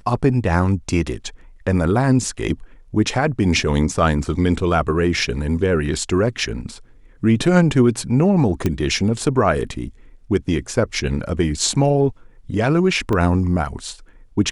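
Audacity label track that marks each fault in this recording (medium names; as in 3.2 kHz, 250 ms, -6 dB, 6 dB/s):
8.660000	8.660000	pop -7 dBFS
13.130000	13.130000	dropout 2.2 ms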